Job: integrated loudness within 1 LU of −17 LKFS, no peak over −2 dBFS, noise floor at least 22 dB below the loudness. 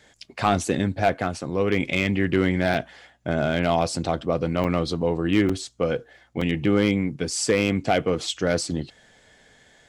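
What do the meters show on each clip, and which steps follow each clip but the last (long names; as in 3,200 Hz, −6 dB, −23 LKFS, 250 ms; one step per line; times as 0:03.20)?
share of clipped samples 0.3%; peaks flattened at −11.0 dBFS; number of dropouts 4; longest dropout 4.6 ms; integrated loudness −24.0 LKFS; sample peak −11.0 dBFS; target loudness −17.0 LKFS
→ clipped peaks rebuilt −11 dBFS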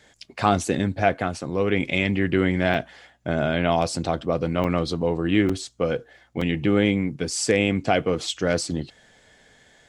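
share of clipped samples 0.0%; number of dropouts 4; longest dropout 4.6 ms
→ repair the gap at 0:02.74/0:04.64/0:05.49/0:06.41, 4.6 ms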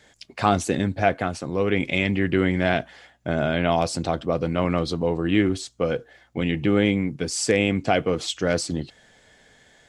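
number of dropouts 0; integrated loudness −23.5 LKFS; sample peak −4.0 dBFS; target loudness −17.0 LKFS
→ level +6.5 dB
brickwall limiter −2 dBFS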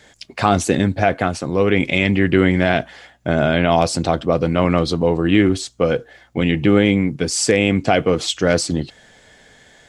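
integrated loudness −17.5 LKFS; sample peak −2.0 dBFS; background noise floor −50 dBFS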